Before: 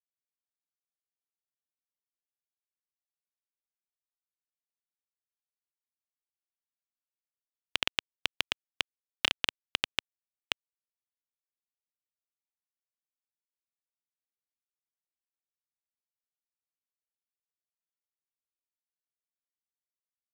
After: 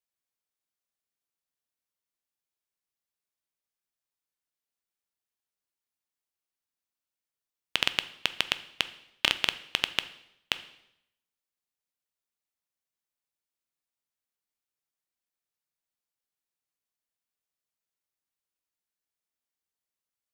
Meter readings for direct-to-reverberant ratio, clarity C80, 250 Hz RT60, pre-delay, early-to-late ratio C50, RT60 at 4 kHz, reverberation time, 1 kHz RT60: 12.0 dB, 18.5 dB, 0.80 s, 7 ms, 15.5 dB, 0.75 s, 0.80 s, 0.75 s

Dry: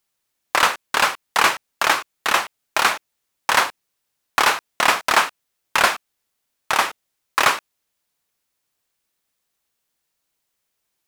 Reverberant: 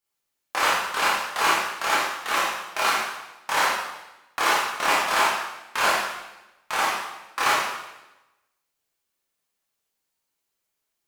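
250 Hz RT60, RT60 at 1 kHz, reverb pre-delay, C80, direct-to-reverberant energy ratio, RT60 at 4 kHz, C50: 1.1 s, 1.0 s, 6 ms, 3.0 dB, -8.0 dB, 0.95 s, 0.0 dB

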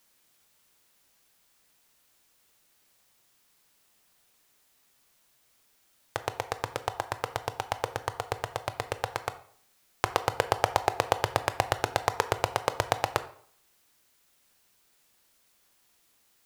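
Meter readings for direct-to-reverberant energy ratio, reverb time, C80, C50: 11.0 dB, 0.55 s, 18.0 dB, 14.5 dB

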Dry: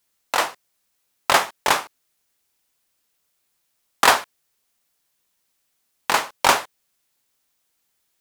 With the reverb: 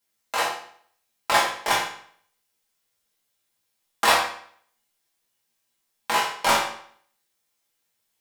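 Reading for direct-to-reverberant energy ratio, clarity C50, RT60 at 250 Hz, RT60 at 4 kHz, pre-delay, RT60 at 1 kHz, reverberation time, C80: -5.5 dB, 5.0 dB, 0.60 s, 0.55 s, 4 ms, 0.60 s, 0.60 s, 8.5 dB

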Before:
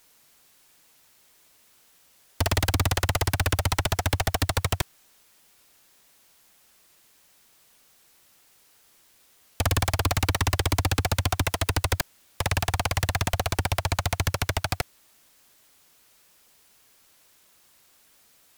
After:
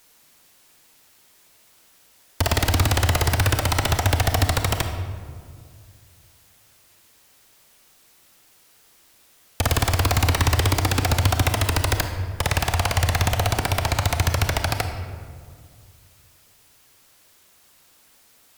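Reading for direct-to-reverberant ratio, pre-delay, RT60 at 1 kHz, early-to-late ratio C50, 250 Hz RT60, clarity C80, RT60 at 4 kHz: 6.0 dB, 26 ms, 1.9 s, 7.0 dB, 2.6 s, 8.0 dB, 1.0 s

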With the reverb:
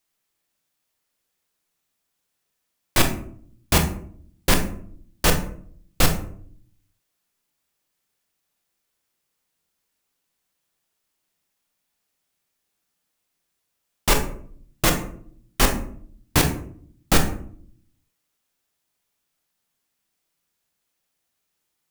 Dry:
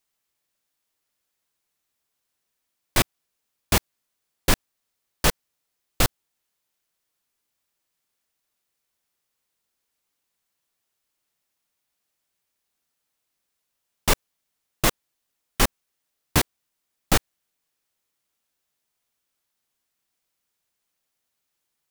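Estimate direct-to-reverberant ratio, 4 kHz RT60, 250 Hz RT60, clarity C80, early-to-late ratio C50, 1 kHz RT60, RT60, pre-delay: 4.0 dB, 0.30 s, 0.85 s, 13.0 dB, 8.5 dB, 0.50 s, 0.60 s, 24 ms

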